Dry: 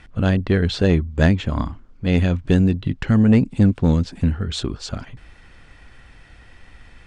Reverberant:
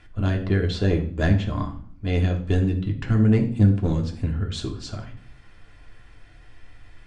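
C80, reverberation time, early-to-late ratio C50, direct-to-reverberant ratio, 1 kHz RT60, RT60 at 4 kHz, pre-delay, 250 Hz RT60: 14.0 dB, 0.50 s, 10.0 dB, 1.0 dB, 0.50 s, 0.40 s, 3 ms, 0.80 s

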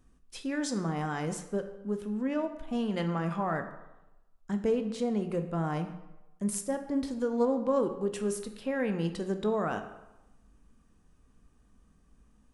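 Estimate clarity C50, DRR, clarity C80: 9.5 dB, 7.0 dB, 12.0 dB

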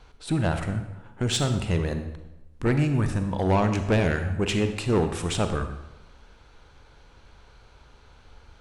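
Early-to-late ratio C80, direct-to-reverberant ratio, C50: 10.5 dB, 7.5 dB, 8.5 dB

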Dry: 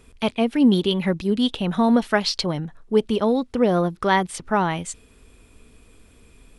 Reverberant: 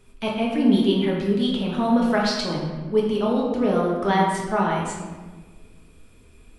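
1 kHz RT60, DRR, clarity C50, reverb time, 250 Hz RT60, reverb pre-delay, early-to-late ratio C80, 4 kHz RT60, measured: 1.2 s, −3.0 dB, 1.5 dB, 1.4 s, 1.8 s, 5 ms, 3.5 dB, 0.90 s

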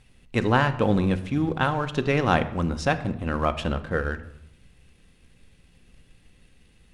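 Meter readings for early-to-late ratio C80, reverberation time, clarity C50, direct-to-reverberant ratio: 16.5 dB, 0.80 s, 14.0 dB, 9.0 dB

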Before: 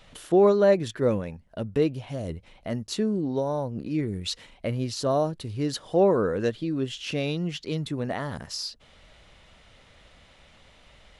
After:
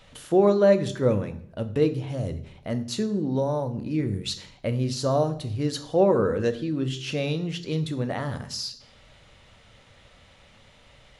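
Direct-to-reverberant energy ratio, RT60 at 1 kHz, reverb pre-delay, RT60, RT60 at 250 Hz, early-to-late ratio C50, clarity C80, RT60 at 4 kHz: 9.0 dB, 0.60 s, 3 ms, 0.65 s, 0.70 s, 14.5 dB, 17.0 dB, 0.50 s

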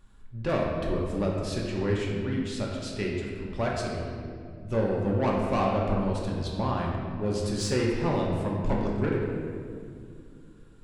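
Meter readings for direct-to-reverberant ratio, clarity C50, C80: −3.0 dB, 0.5 dB, 2.5 dB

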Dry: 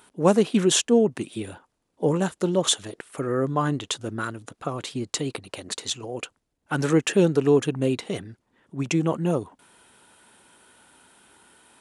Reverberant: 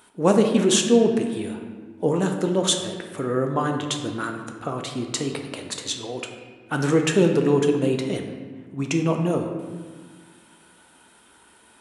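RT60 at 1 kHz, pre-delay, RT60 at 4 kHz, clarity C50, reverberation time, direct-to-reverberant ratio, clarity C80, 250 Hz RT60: 1.5 s, 3 ms, 1.0 s, 5.5 dB, 1.6 s, 3.0 dB, 7.5 dB, 2.2 s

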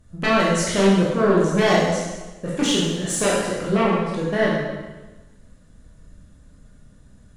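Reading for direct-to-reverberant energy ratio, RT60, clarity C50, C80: −6.0 dB, 1.2 s, −0.5 dB, 2.0 dB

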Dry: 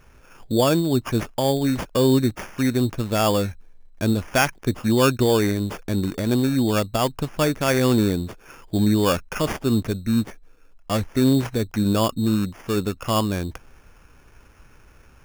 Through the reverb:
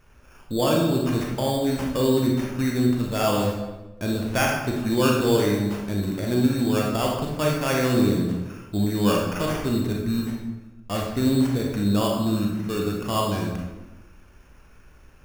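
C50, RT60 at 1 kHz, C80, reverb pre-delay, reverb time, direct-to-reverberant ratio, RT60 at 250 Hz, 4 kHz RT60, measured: 1.5 dB, 1.0 s, 4.5 dB, 28 ms, 1.1 s, −1.5 dB, 1.3 s, 0.75 s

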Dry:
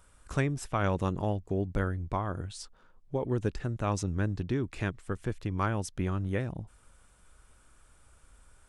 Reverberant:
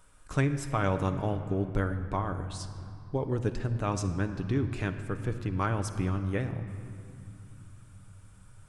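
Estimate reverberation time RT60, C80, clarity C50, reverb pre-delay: 2.7 s, 10.5 dB, 9.5 dB, 7 ms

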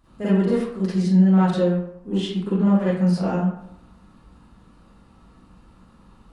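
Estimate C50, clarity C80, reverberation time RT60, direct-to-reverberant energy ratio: −3.5 dB, 3.5 dB, 0.75 s, −11.5 dB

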